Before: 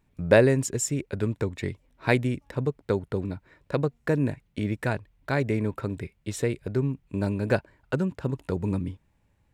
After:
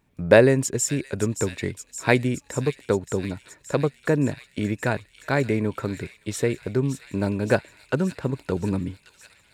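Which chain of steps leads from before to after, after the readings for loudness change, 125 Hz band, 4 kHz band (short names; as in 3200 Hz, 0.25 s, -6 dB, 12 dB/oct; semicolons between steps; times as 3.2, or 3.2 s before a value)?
+3.0 dB, +1.0 dB, +5.0 dB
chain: low shelf 74 Hz -10.5 dB; thin delay 0.571 s, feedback 74%, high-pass 3100 Hz, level -8.5 dB; gain +4 dB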